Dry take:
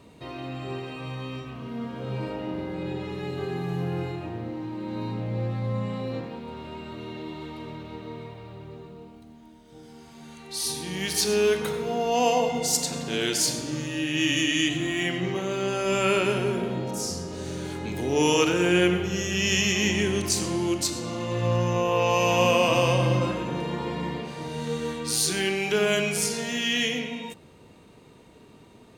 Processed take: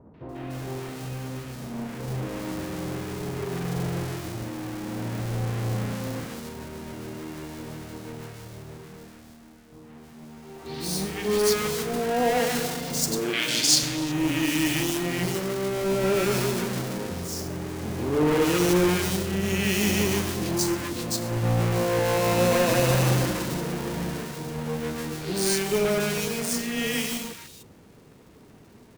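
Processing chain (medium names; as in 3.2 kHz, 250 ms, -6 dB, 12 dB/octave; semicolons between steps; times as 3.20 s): square wave that keeps the level; 13.19–13.83 s: frequency weighting D; three bands offset in time lows, mids, highs 140/290 ms, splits 1.1/3.3 kHz; trim -4 dB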